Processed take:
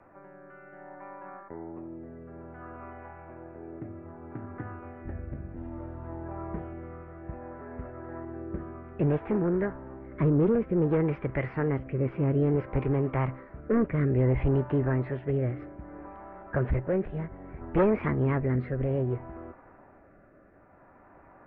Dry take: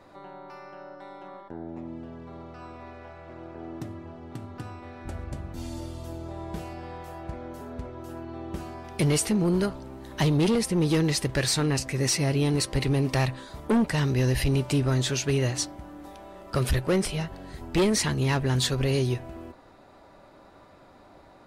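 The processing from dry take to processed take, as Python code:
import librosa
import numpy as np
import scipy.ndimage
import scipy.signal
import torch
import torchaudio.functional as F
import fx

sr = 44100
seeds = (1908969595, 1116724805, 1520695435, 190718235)

y = scipy.signal.sosfilt(scipy.signal.butter(6, 1700.0, 'lowpass', fs=sr, output='sos'), x)
y = fx.formant_shift(y, sr, semitones=3)
y = fx.rotary(y, sr, hz=0.6)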